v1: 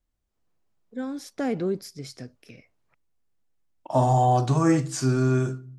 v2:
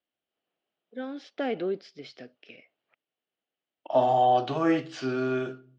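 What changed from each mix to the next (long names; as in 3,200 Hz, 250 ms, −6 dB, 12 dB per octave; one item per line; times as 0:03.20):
master: add loudspeaker in its box 340–4,000 Hz, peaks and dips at 660 Hz +3 dB, 1,000 Hz −7 dB, 3,000 Hz +9 dB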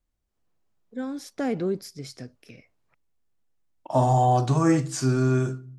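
master: remove loudspeaker in its box 340–4,000 Hz, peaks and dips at 660 Hz +3 dB, 1,000 Hz −7 dB, 3,000 Hz +9 dB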